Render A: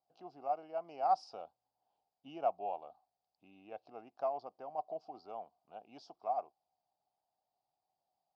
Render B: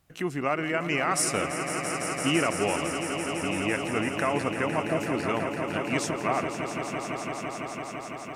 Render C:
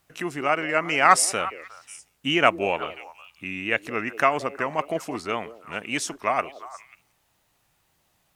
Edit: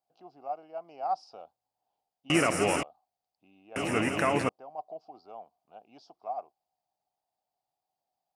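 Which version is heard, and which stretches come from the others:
A
0:02.30–0:02.83: punch in from B
0:03.76–0:04.49: punch in from B
not used: C

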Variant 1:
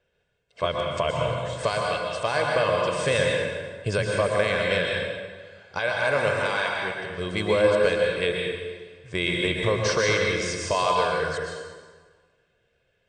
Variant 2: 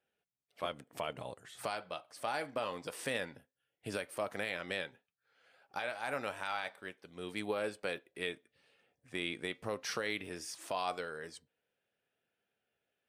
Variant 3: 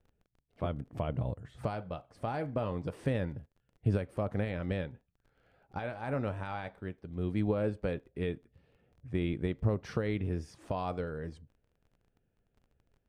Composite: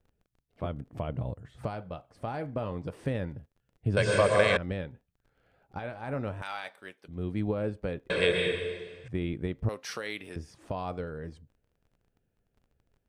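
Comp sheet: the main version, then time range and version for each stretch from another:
3
0:03.97–0:04.57: punch in from 1
0:06.42–0:07.08: punch in from 2
0:08.10–0:09.08: punch in from 1
0:09.69–0:10.36: punch in from 2

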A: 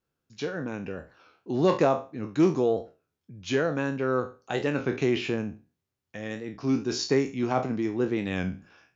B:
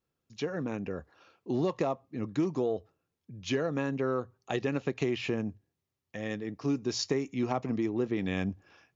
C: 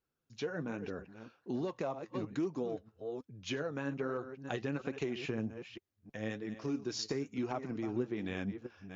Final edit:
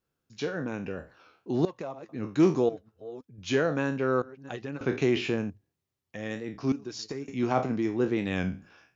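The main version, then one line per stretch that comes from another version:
A
0:01.65–0:02.09: punch in from C
0:02.69–0:03.38: punch in from C
0:04.22–0:04.81: punch in from C
0:05.50–0:06.19: punch in from B
0:06.72–0:07.28: punch in from C

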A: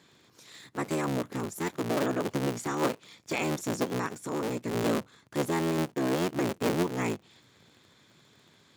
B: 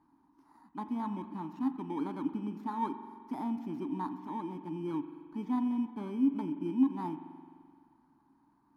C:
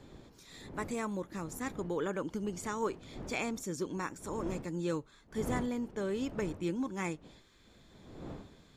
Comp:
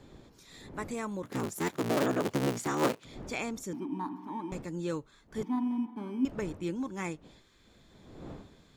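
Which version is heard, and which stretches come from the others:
C
0:01.23–0:03.05: punch in from A
0:03.73–0:04.52: punch in from B
0:05.43–0:06.25: punch in from B

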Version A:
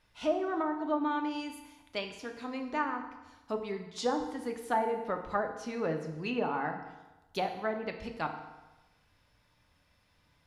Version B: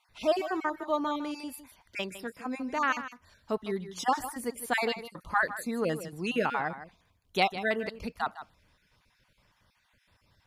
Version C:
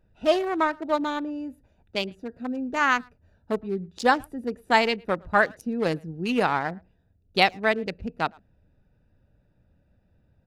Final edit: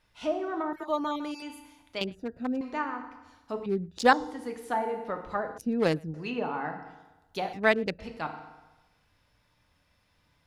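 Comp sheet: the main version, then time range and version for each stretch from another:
A
0:00.73–0:01.42: punch in from B
0:02.01–0:02.61: punch in from C
0:03.66–0:04.13: punch in from C
0:05.58–0:06.14: punch in from C
0:07.53–0:07.99: punch in from C

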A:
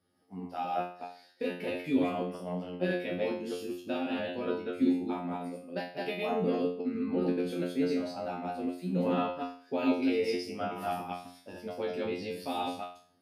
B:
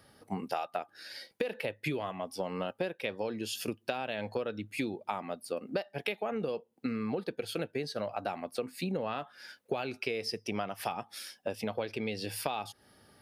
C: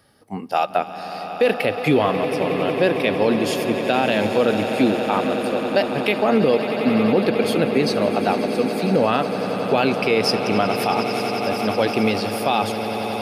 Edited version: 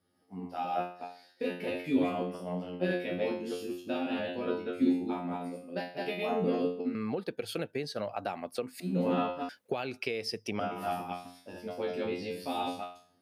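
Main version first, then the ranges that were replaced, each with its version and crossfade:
A
0:06.95–0:08.80: punch in from B
0:09.49–0:10.60: punch in from B
not used: C

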